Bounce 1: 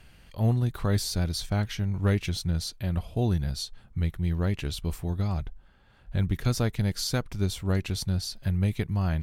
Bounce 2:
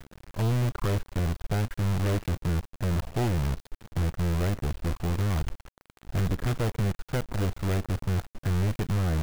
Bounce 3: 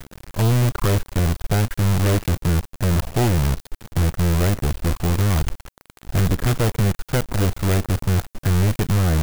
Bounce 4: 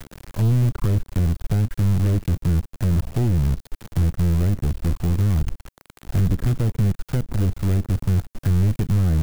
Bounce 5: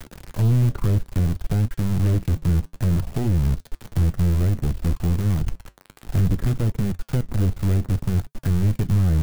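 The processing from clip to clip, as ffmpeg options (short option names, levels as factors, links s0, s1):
-af "lowpass=f=1400:w=0.5412,lowpass=f=1400:w=1.3066,acrusher=bits=6:dc=4:mix=0:aa=0.000001,asoftclip=type=hard:threshold=0.0282,volume=2.51"
-af "highshelf=f=6000:g=7.5,volume=2.51"
-filter_complex "[0:a]acrossover=split=320[s0][s1];[s1]acompressor=threshold=0.0126:ratio=3[s2];[s0][s2]amix=inputs=2:normalize=0"
-af "flanger=delay=3.2:depth=7.4:regen=-73:speed=0.6:shape=triangular,volume=1.58"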